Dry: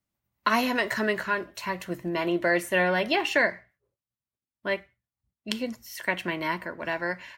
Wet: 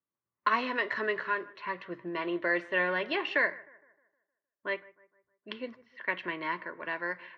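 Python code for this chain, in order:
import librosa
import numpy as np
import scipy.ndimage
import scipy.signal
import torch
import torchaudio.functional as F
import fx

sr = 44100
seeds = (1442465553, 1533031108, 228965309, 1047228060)

p1 = fx.cabinet(x, sr, low_hz=180.0, low_slope=12, high_hz=4000.0, hz=(210.0, 430.0, 740.0, 1100.0, 1800.0), db=(-7, 4, -7, 7, 4))
p2 = fx.env_lowpass(p1, sr, base_hz=1500.0, full_db=-22.0)
p3 = p2 + fx.echo_bbd(p2, sr, ms=154, stages=2048, feedback_pct=44, wet_db=-22.0, dry=0)
y = p3 * librosa.db_to_amplitude(-6.5)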